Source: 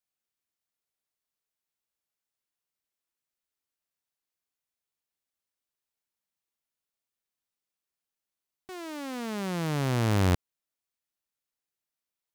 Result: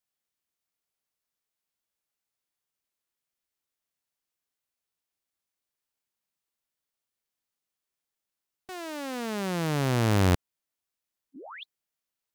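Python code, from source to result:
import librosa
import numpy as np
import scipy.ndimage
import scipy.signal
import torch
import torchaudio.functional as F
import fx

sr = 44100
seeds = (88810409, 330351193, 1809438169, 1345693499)

y = fx.spec_paint(x, sr, seeds[0], shape='rise', start_s=11.35, length_s=0.28, low_hz=210.0, high_hz=3500.0, level_db=-38.0)
y = fx.formant_shift(y, sr, semitones=3)
y = y * librosa.db_to_amplitude(1.5)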